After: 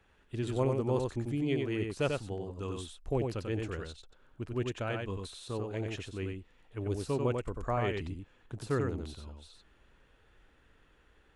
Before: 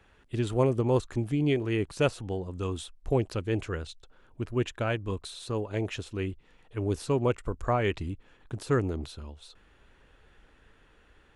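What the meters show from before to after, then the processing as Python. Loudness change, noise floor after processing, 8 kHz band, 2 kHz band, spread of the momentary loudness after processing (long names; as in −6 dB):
−4.5 dB, −66 dBFS, −4.5 dB, −4.5 dB, 14 LU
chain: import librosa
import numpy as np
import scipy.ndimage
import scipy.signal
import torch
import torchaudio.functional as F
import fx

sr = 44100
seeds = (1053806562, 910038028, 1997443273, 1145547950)

y = x + 10.0 ** (-4.0 / 20.0) * np.pad(x, (int(92 * sr / 1000.0), 0))[:len(x)]
y = y * 10.0 ** (-6.0 / 20.0)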